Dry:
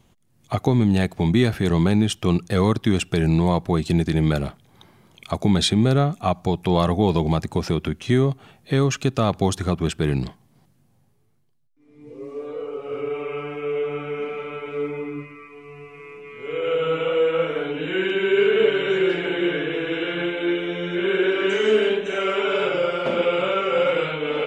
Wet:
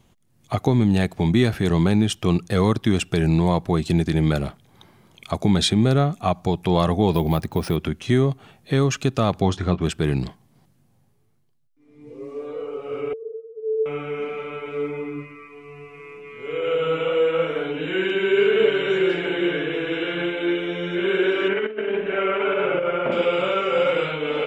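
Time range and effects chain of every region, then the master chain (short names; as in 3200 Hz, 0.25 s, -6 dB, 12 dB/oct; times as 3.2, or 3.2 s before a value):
7.13–7.76 LPF 7700 Hz + careless resampling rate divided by 3×, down filtered, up hold
9.41–9.82 LPF 4400 Hz + doubler 22 ms -11 dB
13.13–13.86 sine-wave speech + steep low-pass 940 Hz 96 dB/oct
21.48–23.12 LPF 2600 Hz 24 dB/oct + negative-ratio compressor -22 dBFS, ratio -0.5
whole clip: dry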